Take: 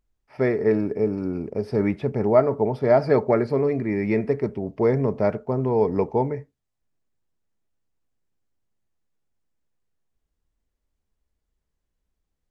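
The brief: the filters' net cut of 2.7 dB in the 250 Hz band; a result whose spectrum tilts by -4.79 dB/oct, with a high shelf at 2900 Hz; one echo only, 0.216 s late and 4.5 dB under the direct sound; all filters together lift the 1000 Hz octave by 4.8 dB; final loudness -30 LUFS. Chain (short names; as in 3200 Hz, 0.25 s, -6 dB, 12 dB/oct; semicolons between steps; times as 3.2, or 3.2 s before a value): bell 250 Hz -4 dB; bell 1000 Hz +7 dB; high shelf 2900 Hz -4.5 dB; echo 0.216 s -4.5 dB; gain -8.5 dB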